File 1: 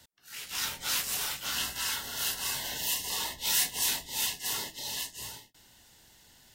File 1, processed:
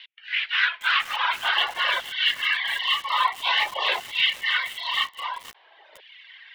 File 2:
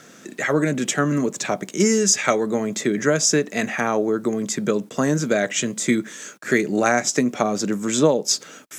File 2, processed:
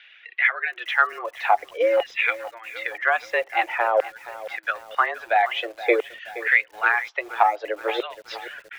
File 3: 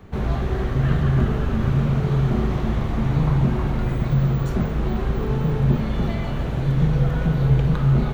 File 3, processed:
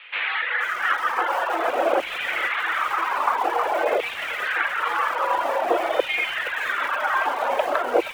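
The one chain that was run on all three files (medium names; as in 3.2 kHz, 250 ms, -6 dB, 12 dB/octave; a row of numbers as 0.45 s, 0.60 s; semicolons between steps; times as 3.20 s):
reverb removal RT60 1.7 s; LFO high-pass saw down 0.5 Hz 430–2600 Hz; in parallel at -5.5 dB: overload inside the chain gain 13 dB; on the sum: mistuned SSB +110 Hz 210–3200 Hz; gain riding within 3 dB 0.5 s; bit-crushed delay 473 ms, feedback 55%, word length 6-bit, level -15 dB; normalise loudness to -23 LUFS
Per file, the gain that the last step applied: +11.0 dB, -2.5 dB, +8.5 dB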